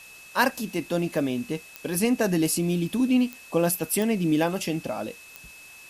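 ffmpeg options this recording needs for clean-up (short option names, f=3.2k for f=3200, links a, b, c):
-af "adeclick=t=4,bandreject=f=2.6k:w=30,afwtdn=0.0035"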